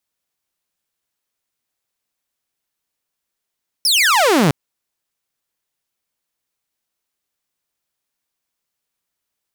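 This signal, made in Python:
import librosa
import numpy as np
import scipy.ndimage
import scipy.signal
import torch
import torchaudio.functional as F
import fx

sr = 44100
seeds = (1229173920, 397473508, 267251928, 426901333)

y = fx.laser_zap(sr, level_db=-8.5, start_hz=5600.0, end_hz=130.0, length_s=0.66, wave='saw')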